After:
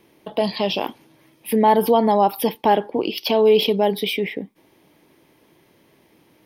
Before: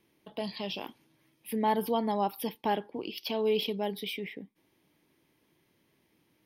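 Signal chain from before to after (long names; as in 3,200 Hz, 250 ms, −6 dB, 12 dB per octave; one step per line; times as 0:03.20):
parametric band 620 Hz +6 dB 1.8 octaves
in parallel at +3 dB: brickwall limiter −21.5 dBFS, peak gain reduction 9.5 dB
on the sum: level +4 dB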